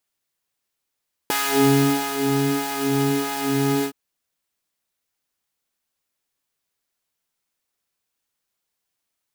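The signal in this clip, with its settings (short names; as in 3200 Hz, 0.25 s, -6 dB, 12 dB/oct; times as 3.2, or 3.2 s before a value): synth patch with filter wobble C#4, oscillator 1 triangle, oscillator 2 saw, interval +7 st, oscillator 2 level -3.5 dB, sub -7 dB, noise -10 dB, filter highpass, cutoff 110 Hz, Q 0.99, filter envelope 3 oct, attack 1.2 ms, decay 0.84 s, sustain -7 dB, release 0.08 s, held 2.54 s, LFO 1.6 Hz, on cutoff 1.3 oct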